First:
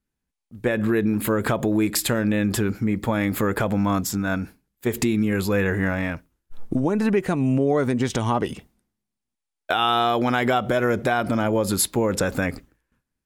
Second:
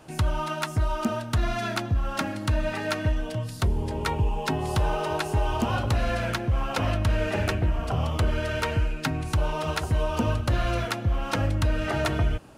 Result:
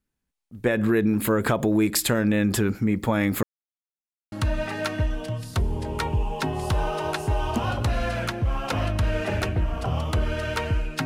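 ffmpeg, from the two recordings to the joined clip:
ffmpeg -i cue0.wav -i cue1.wav -filter_complex "[0:a]apad=whole_dur=11.05,atrim=end=11.05,asplit=2[link_01][link_02];[link_01]atrim=end=3.43,asetpts=PTS-STARTPTS,afade=type=out:start_time=3.426:duration=0.004:curve=hsin[link_03];[link_02]atrim=start=3.43:end=4.32,asetpts=PTS-STARTPTS,volume=0[link_04];[1:a]atrim=start=2.38:end=9.11,asetpts=PTS-STARTPTS,afade=type=in:duration=0.004:curve=hsin[link_05];[link_03][link_04][link_05]concat=n=3:v=0:a=1" out.wav

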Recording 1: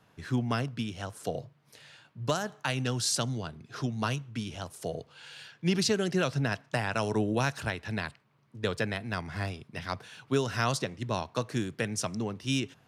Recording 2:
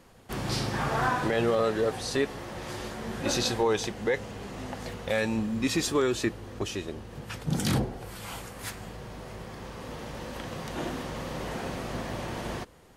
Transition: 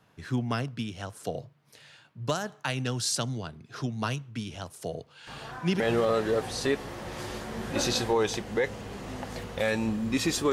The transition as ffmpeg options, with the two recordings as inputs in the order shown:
ffmpeg -i cue0.wav -i cue1.wav -filter_complex "[1:a]asplit=2[link_01][link_02];[0:a]apad=whole_dur=10.52,atrim=end=10.52,atrim=end=5.802[link_03];[link_02]atrim=start=1.298:end=6.02[link_04];[link_01]atrim=start=0.77:end=1.3,asetpts=PTS-STARTPTS,volume=-15dB,afade=type=in:duration=0.004:curve=hsin,afade=type=out:start_time=0.526:duration=0.004:curve=hsin,adelay=5270[link_05];[link_03][link_04]acrossfade=duration=0.004:curve1=hsin:curve2=hsin[link_06];[link_06][link_05]amix=inputs=2:normalize=0" out.wav

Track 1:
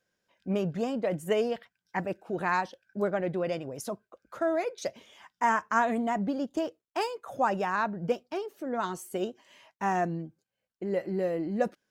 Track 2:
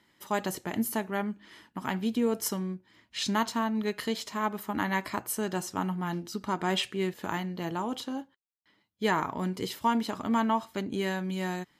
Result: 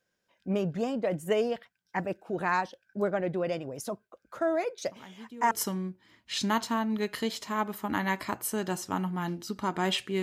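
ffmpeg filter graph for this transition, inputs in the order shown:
ffmpeg -i cue0.wav -i cue1.wav -filter_complex "[1:a]asplit=2[link_01][link_02];[0:a]apad=whole_dur=10.22,atrim=end=10.22,atrim=end=5.512[link_03];[link_02]atrim=start=2.358:end=7.07[link_04];[link_01]atrim=start=1.72:end=2.36,asetpts=PTS-STARTPTS,volume=-17.5dB,afade=type=in:duration=0.004:curve=hsin,afade=type=out:start_time=0.636:duration=0.004:curve=hsin,adelay=4870[link_05];[link_03][link_04]acrossfade=duration=0.004:curve1=hsin:curve2=hsin[link_06];[link_06][link_05]amix=inputs=2:normalize=0" out.wav

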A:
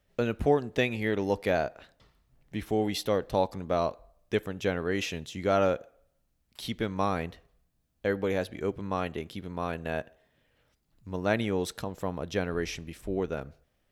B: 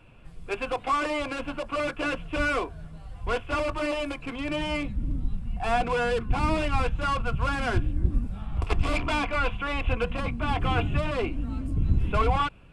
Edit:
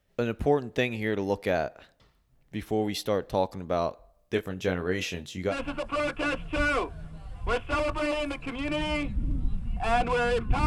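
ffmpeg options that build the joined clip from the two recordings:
ffmpeg -i cue0.wav -i cue1.wav -filter_complex "[0:a]asettb=1/sr,asplit=3[link_01][link_02][link_03];[link_01]atrim=end=4.124[link_04];[link_02]atrim=start=4.12:end=5.55,asetpts=PTS-STARTPTS,afade=type=in:duration=0.004:curve=qsin,afade=type=out:start_time=1.426:duration=0.004:curve=qsin,asplit=2[link_05][link_06];[link_06]adelay=22,volume=-7dB[link_07];[link_05][link_07]amix=inputs=2:normalize=0,atrim=end_sample=63063[link_08];[link_03]atrim=start=5.546[link_09];[link_04][link_08]acrossfade=duration=0.004:curve1=hsin:curve2=qsin[link_10];[link_10][link_09]acrossfade=duration=0.004:curve1=qsin:curve2=hsin,apad=whole_dur=10.66,atrim=end=10.66,atrim=end=5.55,asetpts=PTS-STARTPTS[link_11];[1:a]atrim=start=1.27:end=6.46,asetpts=PTS-STARTPTS[link_12];[link_11][link_12]acrossfade=duration=0.08:curve1=tri:curve2=tri" out.wav

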